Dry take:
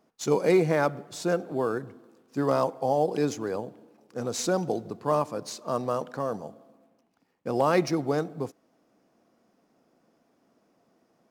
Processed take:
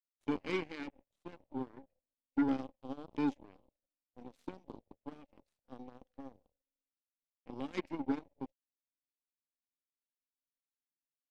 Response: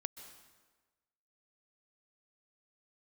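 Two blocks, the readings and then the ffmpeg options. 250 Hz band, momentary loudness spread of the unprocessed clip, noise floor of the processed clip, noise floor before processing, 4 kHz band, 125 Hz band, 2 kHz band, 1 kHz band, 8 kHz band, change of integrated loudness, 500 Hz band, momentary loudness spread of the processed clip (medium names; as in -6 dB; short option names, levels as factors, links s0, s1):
-7.5 dB, 14 LU, under -85 dBFS, -69 dBFS, -14.0 dB, -18.5 dB, -12.5 dB, -17.5 dB, under -30 dB, -11.5 dB, -20.0 dB, 20 LU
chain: -filter_complex "[0:a]asplit=3[s0][s1][s2];[s0]bandpass=f=270:t=q:w=8,volume=1[s3];[s1]bandpass=f=2290:t=q:w=8,volume=0.501[s4];[s2]bandpass=f=3010:t=q:w=8,volume=0.355[s5];[s3][s4][s5]amix=inputs=3:normalize=0,aeval=exprs='0.0708*(cos(1*acos(clip(val(0)/0.0708,-1,1)))-cos(1*PI/2))+0.000447*(cos(3*acos(clip(val(0)/0.0708,-1,1)))-cos(3*PI/2))+0.01*(cos(7*acos(clip(val(0)/0.0708,-1,1)))-cos(7*PI/2))+0.00224*(cos(8*acos(clip(val(0)/0.0708,-1,1)))-cos(8*PI/2))':c=same,volume=1.19"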